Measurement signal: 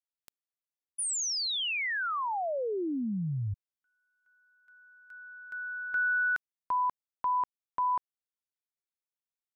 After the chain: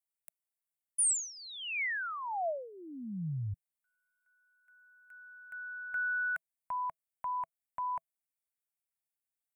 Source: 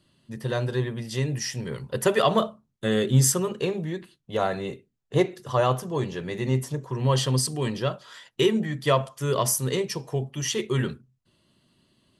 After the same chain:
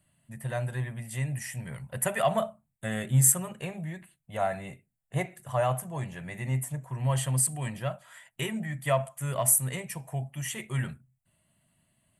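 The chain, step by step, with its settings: FFT filter 160 Hz 0 dB, 430 Hz -16 dB, 660 Hz +4 dB, 1.1 kHz -5 dB, 2.2 kHz +3 dB, 3.4 kHz -9 dB, 5.3 kHz -15 dB, 8.1 kHz +8 dB; trim -3.5 dB

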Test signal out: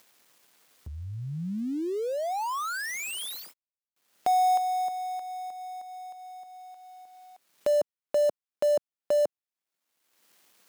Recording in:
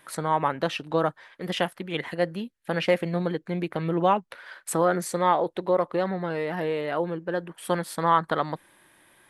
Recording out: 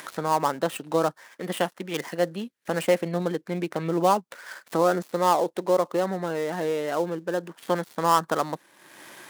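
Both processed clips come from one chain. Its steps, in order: dead-time distortion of 0.083 ms; high-pass 180 Hz 12 dB/octave; upward compressor, threshold -33 dBFS; dynamic bell 2.2 kHz, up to -4 dB, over -39 dBFS, Q 1.1; trim +1.5 dB

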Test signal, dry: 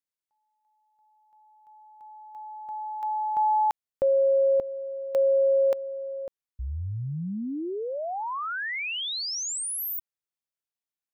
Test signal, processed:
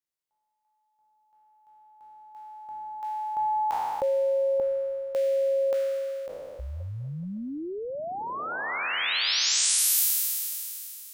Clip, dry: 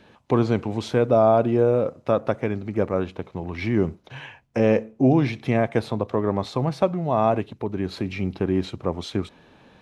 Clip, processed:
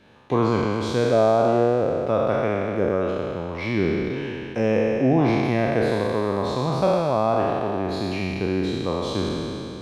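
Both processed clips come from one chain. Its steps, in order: spectral sustain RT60 2.97 s; trim -3.5 dB

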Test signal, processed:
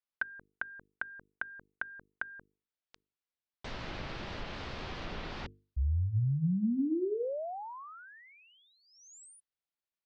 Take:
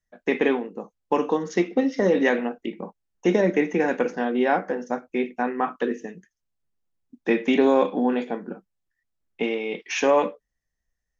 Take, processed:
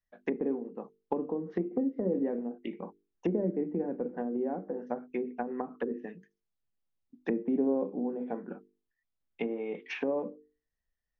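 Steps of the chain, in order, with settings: low-pass 5 kHz 24 dB/octave; hum notches 50/100/150/200/250/300/350/400/450 Hz; low-pass that closes with the level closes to 400 Hz, closed at -21 dBFS; trim -6 dB

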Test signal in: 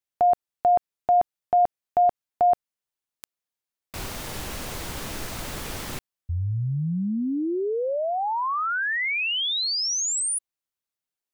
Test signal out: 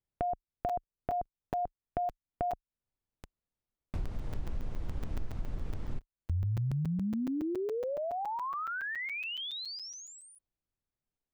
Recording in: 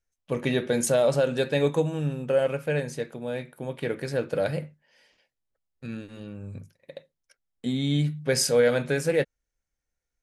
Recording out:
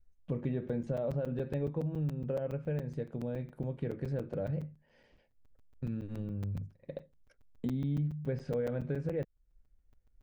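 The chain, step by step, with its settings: low-pass that closes with the level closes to 2.8 kHz, closed at -20.5 dBFS; tilt EQ -4.5 dB/octave; compression 3:1, threshold -34 dBFS; crackling interface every 0.14 s, samples 256, zero, from 0.69 s; trim -2.5 dB

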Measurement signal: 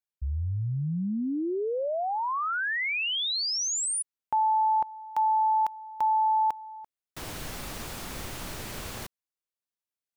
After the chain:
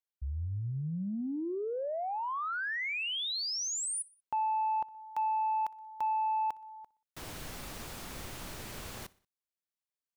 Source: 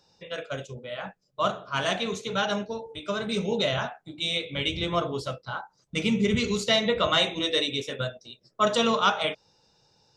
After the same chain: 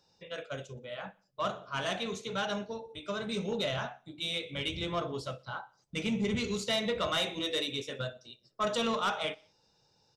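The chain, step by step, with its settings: saturation -18 dBFS; on a send: feedback delay 61 ms, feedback 51%, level -23 dB; on the sum: trim -5.5 dB

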